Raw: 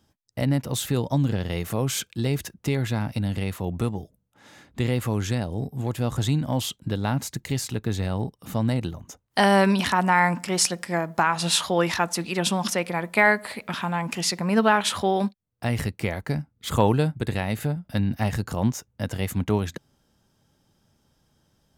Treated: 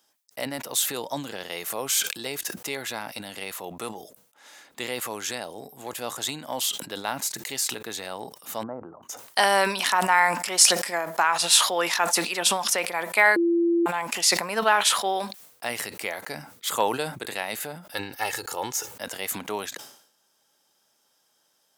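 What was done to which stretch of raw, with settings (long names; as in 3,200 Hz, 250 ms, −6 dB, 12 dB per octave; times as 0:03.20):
0:08.63–0:09.03: elliptic low-pass filter 1,300 Hz, stop band 70 dB
0:13.36–0:13.86: beep over 340 Hz −9 dBFS
0:17.92–0:18.92: comb filter 2.3 ms, depth 70%
whole clip: high-pass filter 560 Hz 12 dB per octave; high-shelf EQ 5,100 Hz +8.5 dB; level that may fall only so fast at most 89 dB per second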